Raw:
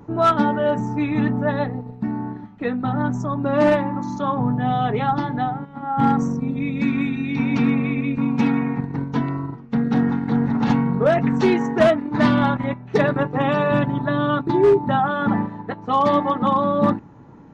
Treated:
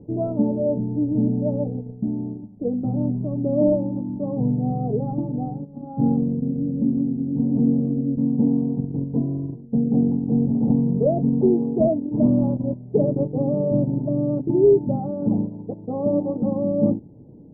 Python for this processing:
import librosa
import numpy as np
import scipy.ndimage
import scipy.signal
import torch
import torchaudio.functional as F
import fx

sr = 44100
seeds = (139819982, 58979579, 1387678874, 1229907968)

y = scipy.signal.sosfilt(scipy.signal.butter(6, 610.0, 'lowpass', fs=sr, output='sos'), x)